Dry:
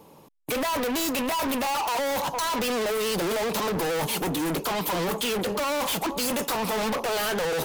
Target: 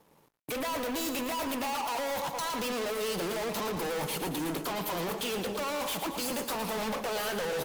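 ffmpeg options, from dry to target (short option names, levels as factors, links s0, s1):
-af "aecho=1:1:113|226|339|452|565|678:0.355|0.195|0.107|0.059|0.0325|0.0179,aeval=exprs='sgn(val(0))*max(abs(val(0))-0.00188,0)':c=same,volume=0.473"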